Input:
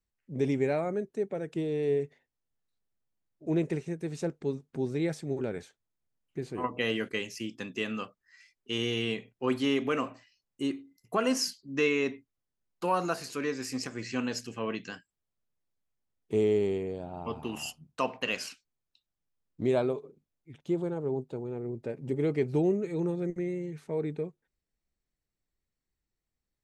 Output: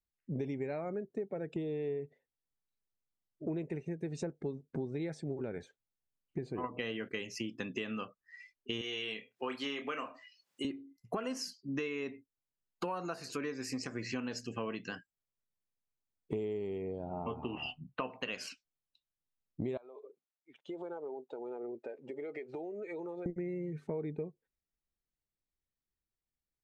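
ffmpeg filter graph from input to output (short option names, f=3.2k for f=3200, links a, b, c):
-filter_complex "[0:a]asettb=1/sr,asplit=3[a][b][c];[a]atrim=end=8.814[d];[b]atrim=start=8.81:end=10.65,asetpts=PTS-STARTPTS,afade=t=in:d=0.004:c=qsin,afade=t=out:st=1.836:d=0.004:c=qsin,highpass=f=880:p=1,acompressor=mode=upward:threshold=-51dB:ratio=2.5:attack=3.2:release=140:knee=2.83:detection=peak,asplit=2[e][f];[f]adelay=28,volume=-8dB[g];[e][g]amix=inputs=2:normalize=0,atrim=end_sample=81144[h];[c]atrim=start=10.646[i];[d][h]acrossfade=d=0.004:c1=hsin:c2=qsin[j];[j][i]acrossfade=d=0.004:c1=qsin:c2=hsin,asettb=1/sr,asplit=3[k][l][m];[k]atrim=end=17.094[n];[l]atrim=start=17.09:end=18.1,asetpts=PTS-STARTPTS,afade=t=in:d=0.004:c=qsin,afade=t=out:st=1.006:d=0.004:c=qsin,lowpass=f=3.3k:w=0.5412,lowpass=f=3.3k:w=1.3066,asplit=2[o][p];[p]adelay=16,volume=-8.5dB[q];[o][q]amix=inputs=2:normalize=0,atrim=end_sample=44541[r];[m]atrim=start=18.096[s];[n][r]acrossfade=d=0.004:c1=hsin:c2=qsin[t];[t][s]acrossfade=d=0.004:c1=qsin:c2=hsin,asettb=1/sr,asplit=3[u][v][w];[u]atrim=end=19.774[x];[v]atrim=start=19.77:end=23.26,asetpts=PTS-STARTPTS,afade=t=in:d=0.004:c=qsin,afade=t=out:st=3.486:d=0.004:c=qsin,highpass=630,lowpass=6.6k,acompressor=threshold=-44dB:ratio=16:attack=3.2:release=140:knee=1:detection=peak[y];[w]atrim=start=23.256[z];[x][y]acrossfade=d=0.004:c1=hsin:c2=qsin[aa];[aa][z]acrossfade=d=0.004:c1=qsin:c2=hsin,afftdn=nr=15:nf=-53,acompressor=threshold=-42dB:ratio=8,highshelf=f=7.3k:g=-6.5,volume=7dB"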